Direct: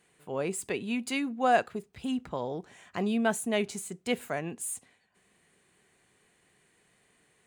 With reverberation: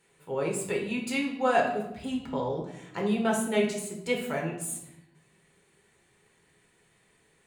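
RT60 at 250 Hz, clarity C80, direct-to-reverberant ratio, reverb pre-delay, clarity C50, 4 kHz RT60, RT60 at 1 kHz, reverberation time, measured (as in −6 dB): 1.2 s, 9.5 dB, −0.5 dB, 6 ms, 6.0 dB, 0.65 s, 0.80 s, 0.85 s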